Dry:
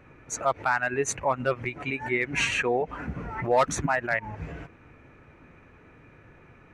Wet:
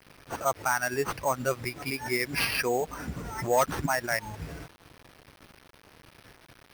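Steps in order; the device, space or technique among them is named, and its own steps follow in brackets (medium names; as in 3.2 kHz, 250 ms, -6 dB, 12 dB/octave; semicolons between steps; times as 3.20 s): early 8-bit sampler (sample-rate reducer 7.3 kHz, jitter 0%; bit crusher 8-bit); trim -2 dB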